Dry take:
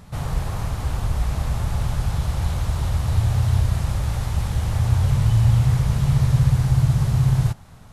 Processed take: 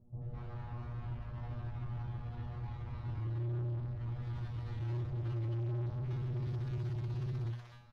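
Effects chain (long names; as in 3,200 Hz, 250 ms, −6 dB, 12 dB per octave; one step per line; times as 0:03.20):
high-shelf EQ 3,400 Hz −7 dB, from 0:04.01 +4 dB, from 0:06.22 +11.5 dB
tuned comb filter 120 Hz, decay 0.38 s, harmonics all, mix 100%
soft clipping −32 dBFS, distortion −6 dB
high-frequency loss of the air 290 metres
multiband delay without the direct sound lows, highs 210 ms, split 630 Hz
level −2 dB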